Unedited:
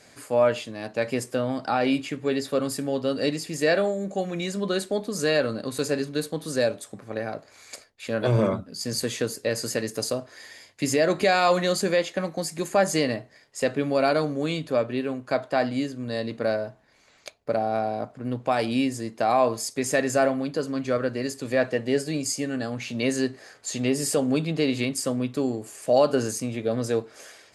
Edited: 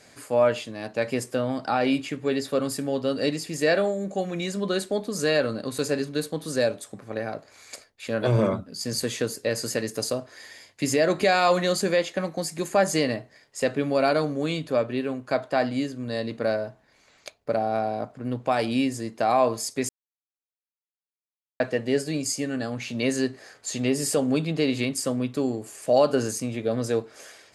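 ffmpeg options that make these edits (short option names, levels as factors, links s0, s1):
-filter_complex "[0:a]asplit=3[s0][s1][s2];[s0]atrim=end=19.89,asetpts=PTS-STARTPTS,afade=t=out:st=19.886:d=0.004:c=hsin[s3];[s1]atrim=start=19.89:end=21.6,asetpts=PTS-STARTPTS,volume=0[s4];[s2]atrim=start=21.6,asetpts=PTS-STARTPTS,afade=t=in:d=0.004:c=hsin[s5];[s3][s4][s5]concat=n=3:v=0:a=1"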